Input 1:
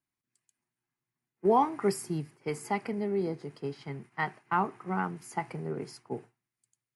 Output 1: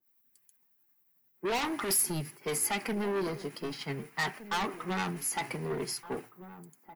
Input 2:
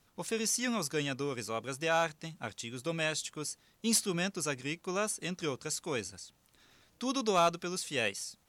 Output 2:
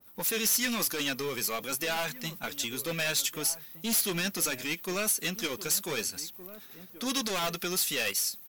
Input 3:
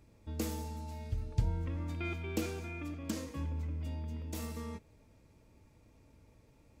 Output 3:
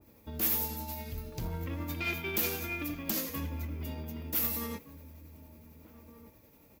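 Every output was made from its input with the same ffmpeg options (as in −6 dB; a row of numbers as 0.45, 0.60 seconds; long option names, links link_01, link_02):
-filter_complex "[0:a]highpass=frequency=130:poles=1,asplit=2[link_01][link_02];[link_02]alimiter=limit=-24dB:level=0:latency=1:release=18,volume=0dB[link_03];[link_01][link_03]amix=inputs=2:normalize=0,aexciter=amount=14.4:drive=3.8:freq=12000,volume=26dB,asoftclip=hard,volume=-26dB,tremolo=f=11:d=0.31,asoftclip=type=tanh:threshold=-29dB,flanger=delay=3.4:depth=1.8:regen=-52:speed=1.1:shape=sinusoidal,asplit=2[link_04][link_05];[link_05]adelay=1516,volume=-14dB,highshelf=frequency=4000:gain=-34.1[link_06];[link_04][link_06]amix=inputs=2:normalize=0,adynamicequalizer=threshold=0.002:dfrequency=1500:dqfactor=0.7:tfrequency=1500:tqfactor=0.7:attack=5:release=100:ratio=0.375:range=3.5:mode=boostabove:tftype=highshelf,volume=4.5dB"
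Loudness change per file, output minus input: 0.0, +4.0, +6.0 LU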